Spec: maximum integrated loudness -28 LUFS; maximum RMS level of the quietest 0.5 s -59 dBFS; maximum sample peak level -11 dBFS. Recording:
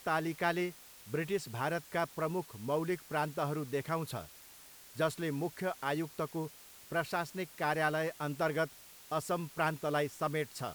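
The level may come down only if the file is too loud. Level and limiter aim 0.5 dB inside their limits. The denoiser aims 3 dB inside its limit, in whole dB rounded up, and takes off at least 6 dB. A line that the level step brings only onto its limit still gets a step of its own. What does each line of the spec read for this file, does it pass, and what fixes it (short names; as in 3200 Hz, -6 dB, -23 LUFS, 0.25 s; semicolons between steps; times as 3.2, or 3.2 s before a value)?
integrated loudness -35.5 LUFS: OK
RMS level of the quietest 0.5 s -55 dBFS: fail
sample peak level -17.0 dBFS: OK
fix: denoiser 7 dB, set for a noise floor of -55 dBFS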